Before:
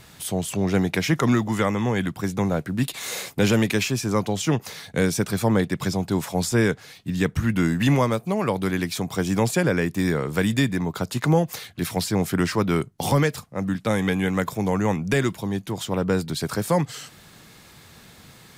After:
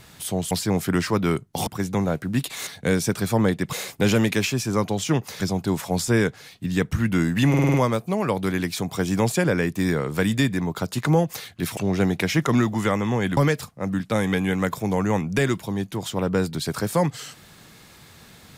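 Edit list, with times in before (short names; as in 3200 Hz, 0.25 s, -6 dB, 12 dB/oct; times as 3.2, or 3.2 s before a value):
0.51–2.11 swap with 11.96–13.12
4.78–5.84 move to 3.11
7.93 stutter 0.05 s, 6 plays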